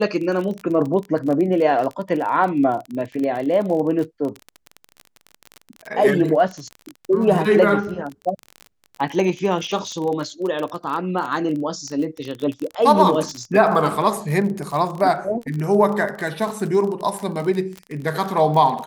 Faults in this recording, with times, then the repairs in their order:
crackle 32/s -25 dBFS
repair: de-click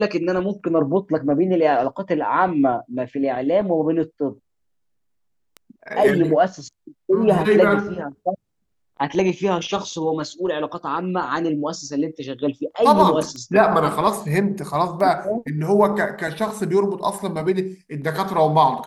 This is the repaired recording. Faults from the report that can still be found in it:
none

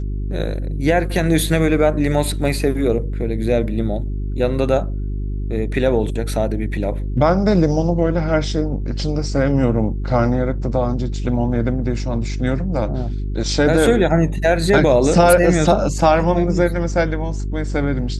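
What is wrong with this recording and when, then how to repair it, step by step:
hum 50 Hz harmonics 8 -23 dBFS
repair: de-hum 50 Hz, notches 8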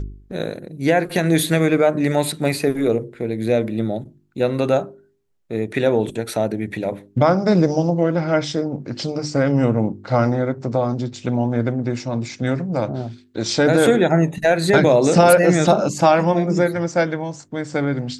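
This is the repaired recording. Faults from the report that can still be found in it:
none

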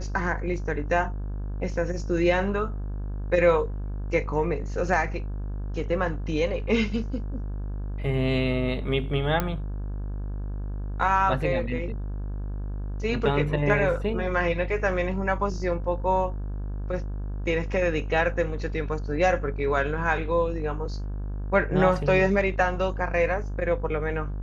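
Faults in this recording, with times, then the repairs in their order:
buzz 50 Hz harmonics 34 -31 dBFS
9.4 pop -11 dBFS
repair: de-click; de-hum 50 Hz, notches 34

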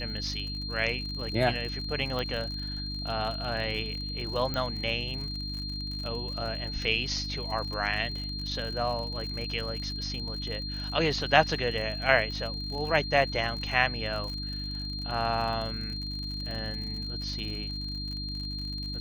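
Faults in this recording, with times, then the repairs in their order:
crackle 59/s -36 dBFS
hum 50 Hz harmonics 6 -37 dBFS
tone 4200 Hz -36 dBFS
2.19 pop -20 dBFS
4.54 pop -18 dBFS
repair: de-click; de-hum 50 Hz, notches 6; notch 4200 Hz, Q 30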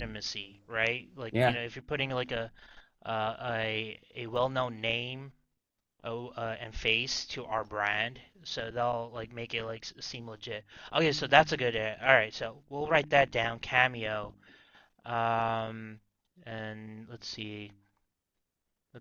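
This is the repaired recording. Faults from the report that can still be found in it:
none

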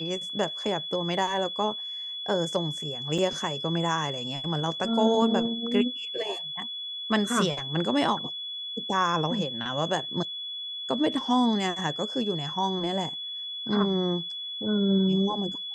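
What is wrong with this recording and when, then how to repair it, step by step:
tone 3400 Hz -33 dBFS
3.18 gap 4.2 ms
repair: notch 3400 Hz, Q 30; interpolate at 3.18, 4.2 ms

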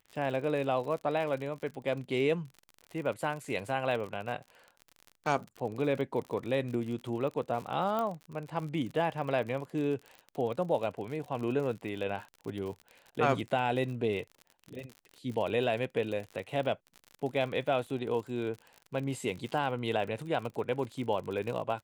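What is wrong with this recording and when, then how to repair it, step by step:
crackle 56/s -38 dBFS
7.99 pop -21 dBFS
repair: de-click

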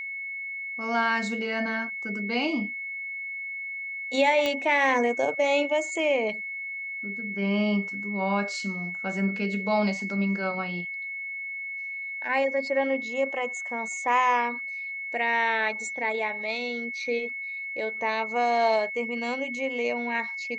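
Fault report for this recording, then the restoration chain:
tone 2200 Hz -32 dBFS
4.46 pop -13 dBFS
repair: de-click; notch 2200 Hz, Q 30

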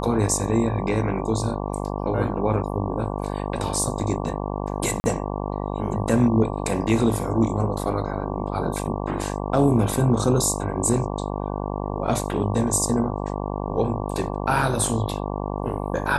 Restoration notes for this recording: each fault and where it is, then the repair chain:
buzz 50 Hz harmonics 23 -28 dBFS
5–5.04 gap 40 ms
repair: de-hum 50 Hz, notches 23; interpolate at 5, 40 ms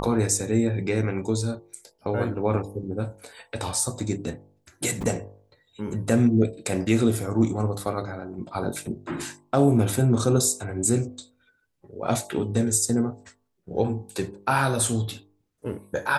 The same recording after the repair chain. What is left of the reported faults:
none

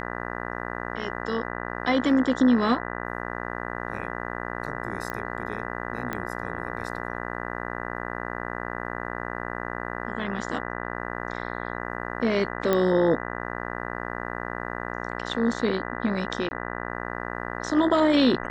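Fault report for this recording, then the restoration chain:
buzz 60 Hz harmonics 33 -33 dBFS
5.1 pop -18 dBFS
6.13 pop -16 dBFS
12.73 pop -10 dBFS
16.49–16.51 gap 20 ms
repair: de-click; de-hum 60 Hz, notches 33; interpolate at 16.49, 20 ms

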